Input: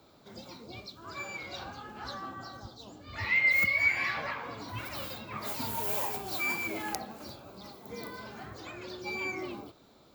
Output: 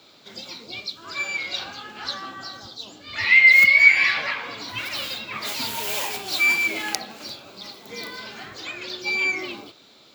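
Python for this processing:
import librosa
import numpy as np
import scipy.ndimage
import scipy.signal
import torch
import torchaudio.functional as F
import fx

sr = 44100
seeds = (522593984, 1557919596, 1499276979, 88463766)

y = fx.weighting(x, sr, curve='D')
y = y * librosa.db_to_amplitude(4.0)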